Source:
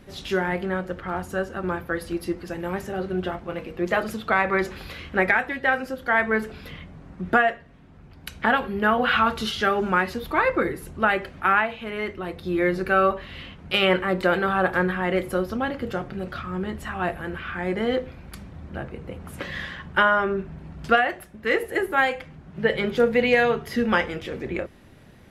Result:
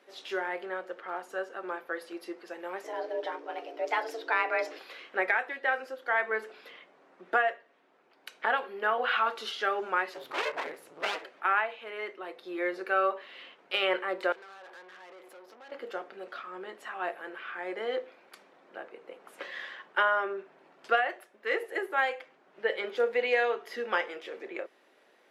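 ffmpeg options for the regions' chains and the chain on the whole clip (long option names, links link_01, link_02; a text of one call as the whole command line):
ffmpeg -i in.wav -filter_complex "[0:a]asettb=1/sr,asplit=3[link_01][link_02][link_03];[link_01]atrim=end=2.844[link_04];[link_02]atrim=start=2.84:end=4.79,asetpts=PTS-STARTPTS,afade=type=in:duration=0.004:curve=qsin,afade=type=out:start_time=1.946:duration=0.004:curve=qsin,equalizer=frequency=5200:width_type=o:width=0.48:gain=7,aeval=exprs='val(0)+0.0158*(sin(2*PI*60*n/s)+sin(2*PI*2*60*n/s)/2+sin(2*PI*3*60*n/s)/3+sin(2*PI*4*60*n/s)/4+sin(2*PI*5*60*n/s)/5)':channel_layout=same,afreqshift=230[link_05];[link_03]atrim=start=4.786[link_06];[link_04][link_05]acrossfade=duration=0.004:curve1=hsin:curve2=qsin[link_07];[link_07][link_06]acrossfade=duration=0.004:curve1=qsin:curve2=hsin,asettb=1/sr,asplit=3[link_08][link_09][link_10];[link_08]atrim=end=10.144[link_11];[link_09]atrim=start=10.14:end=11.25,asetpts=PTS-STARTPTS,afade=type=in:duration=0.004:curve=qsin,afade=type=out:start_time=1.106:duration=0.004:curve=qsin,lowshelf=frequency=120:width_type=q:width=3:gain=13.5,aeval=exprs='abs(val(0))':channel_layout=same[link_12];[link_10]atrim=start=11.246[link_13];[link_11][link_12]acrossfade=duration=0.004:curve1=hsin:curve2=qsin[link_14];[link_14][link_13]acrossfade=duration=0.004:curve1=qsin:curve2=hsin,asettb=1/sr,asplit=3[link_15][link_16][link_17];[link_15]atrim=end=14.324[link_18];[link_16]atrim=start=14.32:end=15.72,asetpts=PTS-STARTPTS,afade=type=in:duration=0.004:curve=qsin,afade=type=out:start_time=1.396:duration=0.004:curve=qsin,acompressor=threshold=-30dB:ratio=4:attack=3.2:release=140:knee=1:detection=peak,aeval=exprs='(tanh(89.1*val(0)+0.6)-tanh(0.6))/89.1':channel_layout=same[link_19];[link_17]atrim=start=15.716[link_20];[link_18][link_19]acrossfade=duration=0.004:curve1=hsin:curve2=qsin[link_21];[link_21][link_20]acrossfade=duration=0.004:curve1=qsin:curve2=hsin,highpass=frequency=390:width=0.5412,highpass=frequency=390:width=1.3066,highshelf=frequency=8800:gain=-11,volume=-6.5dB" out.wav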